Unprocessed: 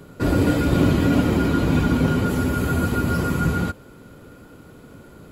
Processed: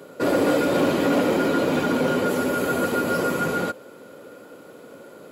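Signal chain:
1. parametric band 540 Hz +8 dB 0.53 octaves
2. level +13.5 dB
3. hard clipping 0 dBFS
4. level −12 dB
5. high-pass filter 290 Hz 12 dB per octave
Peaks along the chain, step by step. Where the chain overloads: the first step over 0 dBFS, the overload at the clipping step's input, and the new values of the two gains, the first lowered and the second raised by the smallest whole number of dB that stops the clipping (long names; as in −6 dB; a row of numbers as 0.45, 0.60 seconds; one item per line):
−5.5, +8.0, 0.0, −12.0, −8.5 dBFS
step 2, 8.0 dB
step 2 +5.5 dB, step 4 −4 dB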